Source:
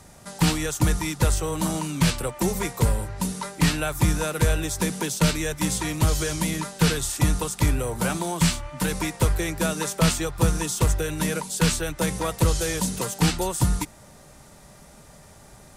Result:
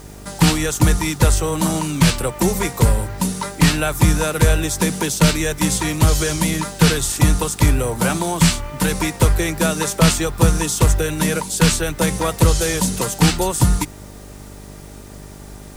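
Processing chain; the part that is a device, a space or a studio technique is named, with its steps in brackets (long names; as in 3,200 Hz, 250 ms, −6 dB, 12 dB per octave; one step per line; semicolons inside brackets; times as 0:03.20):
video cassette with head-switching buzz (hum with harmonics 50 Hz, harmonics 9, −45 dBFS −4 dB per octave; white noise bed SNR 34 dB)
level +6.5 dB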